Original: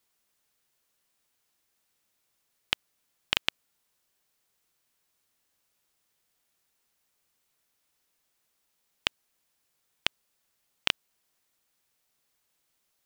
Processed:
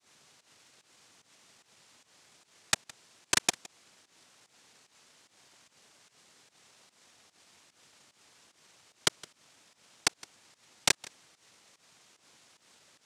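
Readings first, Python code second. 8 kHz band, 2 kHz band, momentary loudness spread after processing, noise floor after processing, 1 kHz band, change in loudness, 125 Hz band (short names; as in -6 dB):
+15.5 dB, -0.5 dB, 5 LU, -71 dBFS, +3.5 dB, +1.5 dB, +3.5 dB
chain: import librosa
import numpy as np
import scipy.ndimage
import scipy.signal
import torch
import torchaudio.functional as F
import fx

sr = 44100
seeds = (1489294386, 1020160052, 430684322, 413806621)

p1 = scipy.signal.sosfilt(scipy.signal.butter(2, 2800.0, 'lowpass', fs=sr, output='sos'), x)
p2 = fx.over_compress(p1, sr, threshold_db=-35.0, ratio=-0.5)
p3 = p1 + F.gain(torch.from_numpy(p2), 1.0).numpy()
p4 = fx.noise_vocoder(p3, sr, seeds[0], bands=2)
p5 = fx.volume_shaper(p4, sr, bpm=148, per_beat=1, depth_db=-17, release_ms=144.0, shape='fast start')
p6 = p5 + 10.0 ** (-22.0 / 20.0) * np.pad(p5, (int(164 * sr / 1000.0), 0))[:len(p5)]
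y = F.gain(torch.from_numpy(p6), 2.0).numpy()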